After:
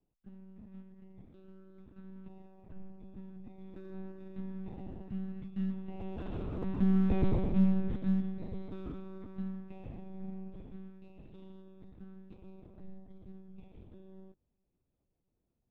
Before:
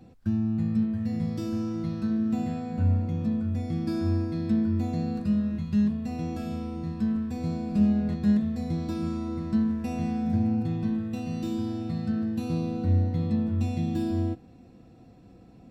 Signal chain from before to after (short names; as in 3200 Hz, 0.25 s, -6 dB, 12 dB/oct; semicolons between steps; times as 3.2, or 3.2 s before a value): Doppler pass-by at 7.16, 10 m/s, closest 2.1 m; monotone LPC vocoder at 8 kHz 190 Hz; sample leveller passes 1; gain +3 dB